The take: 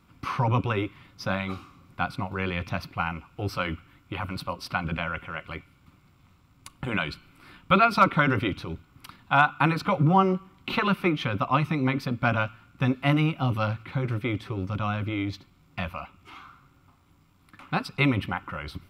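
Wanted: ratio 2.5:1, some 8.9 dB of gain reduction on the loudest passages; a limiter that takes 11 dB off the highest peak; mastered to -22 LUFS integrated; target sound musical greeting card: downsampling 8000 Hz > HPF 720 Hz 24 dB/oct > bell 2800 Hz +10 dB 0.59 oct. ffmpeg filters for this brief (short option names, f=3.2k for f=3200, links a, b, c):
-af "acompressor=threshold=-28dB:ratio=2.5,alimiter=limit=-23dB:level=0:latency=1,aresample=8000,aresample=44100,highpass=f=720:w=0.5412,highpass=f=720:w=1.3066,equalizer=f=2.8k:t=o:w=0.59:g=10,volume=13.5dB"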